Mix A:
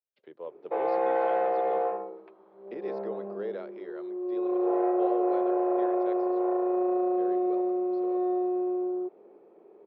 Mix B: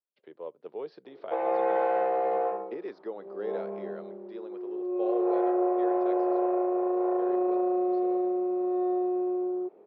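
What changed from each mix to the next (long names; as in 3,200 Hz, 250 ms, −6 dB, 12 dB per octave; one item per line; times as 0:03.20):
background: entry +0.60 s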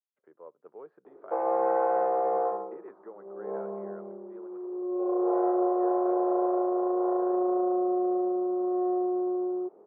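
speech: add transistor ladder low-pass 1,600 Hz, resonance 50%
background: add drawn EQ curve 600 Hz 0 dB, 1,200 Hz +3 dB, 3,800 Hz −26 dB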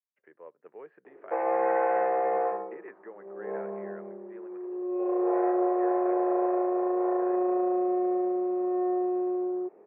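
master: add flat-topped bell 2,200 Hz +14 dB 1 octave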